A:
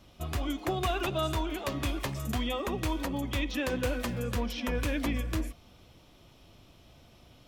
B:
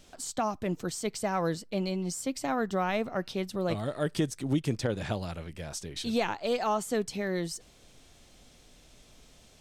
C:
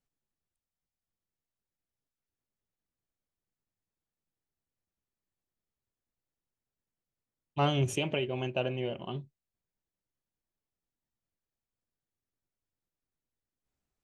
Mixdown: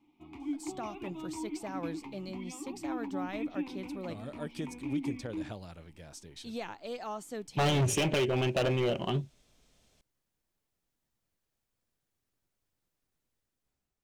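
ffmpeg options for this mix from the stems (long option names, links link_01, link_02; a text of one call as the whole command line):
ffmpeg -i stem1.wav -i stem2.wav -i stem3.wav -filter_complex "[0:a]asplit=3[link_01][link_02][link_03];[link_01]bandpass=frequency=300:width_type=q:width=8,volume=0dB[link_04];[link_02]bandpass=frequency=870:width_type=q:width=8,volume=-6dB[link_05];[link_03]bandpass=frequency=2240:width_type=q:width=8,volume=-9dB[link_06];[link_04][link_05][link_06]amix=inputs=3:normalize=0,volume=1dB[link_07];[1:a]adelay=400,volume=-10.5dB[link_08];[2:a]dynaudnorm=framelen=140:gausssize=9:maxgain=9.5dB,volume=-2dB[link_09];[link_07][link_08][link_09]amix=inputs=3:normalize=0,asoftclip=type=hard:threshold=-24dB" out.wav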